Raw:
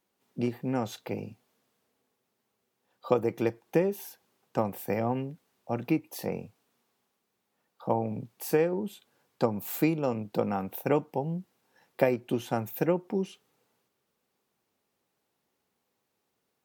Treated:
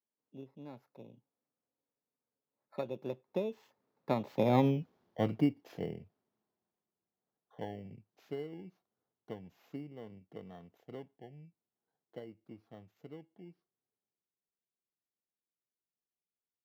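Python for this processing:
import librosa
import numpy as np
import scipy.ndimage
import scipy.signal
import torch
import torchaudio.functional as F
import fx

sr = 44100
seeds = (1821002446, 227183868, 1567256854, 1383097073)

y = fx.bit_reversed(x, sr, seeds[0], block=16)
y = fx.doppler_pass(y, sr, speed_mps=36, closest_m=11.0, pass_at_s=4.78)
y = scipy.signal.lfilter(np.full(5, 1.0 / 5), 1.0, y)
y = fx.high_shelf(y, sr, hz=2200.0, db=-10.0)
y = y * librosa.db_to_amplitude(5.5)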